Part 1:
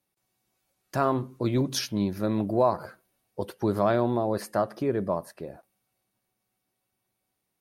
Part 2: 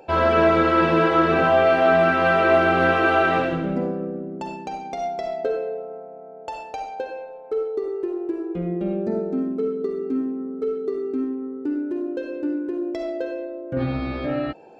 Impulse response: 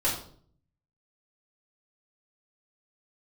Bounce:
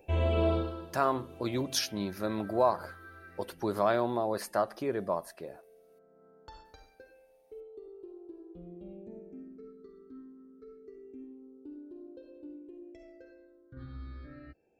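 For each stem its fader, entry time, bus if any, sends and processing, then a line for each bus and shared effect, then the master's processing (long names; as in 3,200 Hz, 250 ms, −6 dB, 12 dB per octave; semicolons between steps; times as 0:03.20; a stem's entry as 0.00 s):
−0.5 dB, 0.00 s, muted 0:05.99–0:06.65, no send, low-shelf EQ 330 Hz −11.5 dB
0:06.59 −9 dB → 0:07.17 −20.5 dB, 0.00 s, no send, low shelf with overshoot 110 Hz +8.5 dB, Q 1.5; all-pass phaser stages 6, 0.27 Hz, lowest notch 680–2,000 Hz; automatic ducking −21 dB, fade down 0.40 s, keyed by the first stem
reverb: not used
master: no processing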